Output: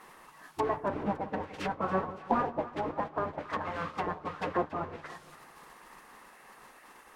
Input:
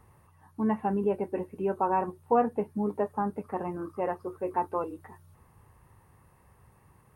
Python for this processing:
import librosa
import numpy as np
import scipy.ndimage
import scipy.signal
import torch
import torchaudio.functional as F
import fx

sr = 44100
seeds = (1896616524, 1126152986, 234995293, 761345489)

p1 = fx.hum_notches(x, sr, base_hz=60, count=3)
p2 = fx.mod_noise(p1, sr, seeds[0], snr_db=12)
p3 = fx.spec_gate(p2, sr, threshold_db=-10, keep='weak')
p4 = fx.peak_eq(p3, sr, hz=1700.0, db=9.0, octaves=2.5)
p5 = fx.env_lowpass_down(p4, sr, base_hz=750.0, full_db=-31.5)
p6 = p5 + fx.echo_split(p5, sr, split_hz=960.0, low_ms=171, high_ms=282, feedback_pct=52, wet_db=-15.5, dry=0)
y = F.gain(torch.from_numpy(p6), 5.5).numpy()